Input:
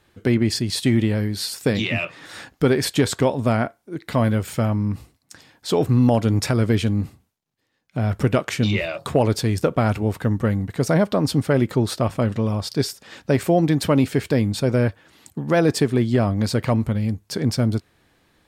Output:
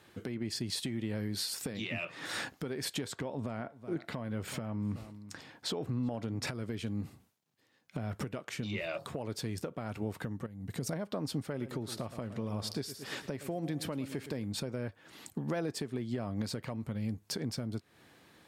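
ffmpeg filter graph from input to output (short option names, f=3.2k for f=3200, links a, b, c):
-filter_complex "[0:a]asettb=1/sr,asplit=3[a][b][c];[a]atrim=end=3.124[d];[b]atrim=start=3.12:end=6.47,asetpts=PTS-STARTPTS,afade=t=in:d=0.004:c=qsin,afade=t=out:st=3.346:d=0.004:c=qsin,aemphasis=mode=reproduction:type=cd,acompressor=threshold=-23dB:ratio=2:attack=3.2:release=140:knee=1:detection=peak,aecho=1:1:374:0.0668,atrim=end_sample=147735[e];[c]atrim=start=6.466[f];[d][e]acrossfade=d=0.004:c1=hsin:c2=qsin[g];[g][f]acrossfade=d=0.004:c1=qsin:c2=hsin,asettb=1/sr,asplit=3[h][i][j];[h]atrim=end=10.464[k];[i]atrim=start=10.46:end=10.93,asetpts=PTS-STARTPTS,afade=t=in:d=0.004:c=qsin,afade=t=out:st=0.466:d=0.004:c=qsin,equalizer=f=1.2k:w=0.33:g=-9,acompressor=threshold=-28dB:ratio=6:attack=3.2:release=140:knee=1:detection=peak[l];[j]atrim=start=10.926[m];[k][l]acrossfade=d=0.004:c1=hsin:c2=qsin[n];[n][m]acrossfade=d=0.004:c1=qsin:c2=hsin,asettb=1/sr,asplit=3[o][p][q];[o]atrim=end=11.484[r];[p]atrim=start=11.48:end=14.44,asetpts=PTS-STARTPTS,afade=t=in:d=0.004:c=qsin,afade=t=out:st=2.956:d=0.004:c=qsin,equalizer=f=11k:w=6:g=6,deesser=0.3,aecho=1:1:112|224|336|448:0.158|0.0666|0.028|0.0117,atrim=end_sample=130536[s];[q]atrim=start=14.436[t];[r][s]acrossfade=d=0.004:c1=hsin:c2=qsin[u];[u][t]acrossfade=d=0.004:c1=qsin:c2=hsin,highpass=110,acompressor=threshold=-32dB:ratio=5,alimiter=level_in=2dB:limit=-24dB:level=0:latency=1:release=314,volume=-2dB,volume=1dB"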